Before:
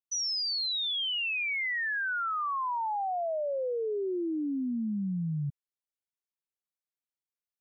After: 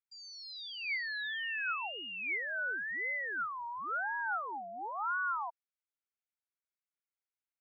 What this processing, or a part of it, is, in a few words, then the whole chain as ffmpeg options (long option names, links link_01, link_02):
voice changer toy: -af "aeval=exprs='val(0)*sin(2*PI*870*n/s+870*0.5/0.96*sin(2*PI*0.96*n/s))':channel_layout=same,highpass=560,equalizer=frequency=580:width_type=q:width=4:gain=-6,equalizer=frequency=830:width_type=q:width=4:gain=5,equalizer=frequency=1400:width_type=q:width=4:gain=9,equalizer=frequency=2200:width_type=q:width=4:gain=10,equalizer=frequency=3100:width_type=q:width=4:gain=-3,lowpass=frequency=3900:width=0.5412,lowpass=frequency=3900:width=1.3066,volume=-6dB"